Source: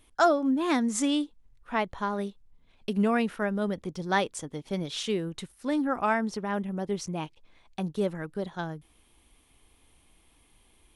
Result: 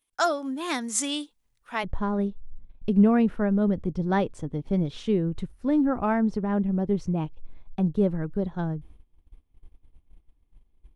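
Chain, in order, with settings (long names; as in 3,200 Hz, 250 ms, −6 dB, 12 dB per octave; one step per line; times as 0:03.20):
noise gate −58 dBFS, range −19 dB
spectral tilt +2.5 dB per octave, from 0:01.83 −4 dB per octave
level −1.5 dB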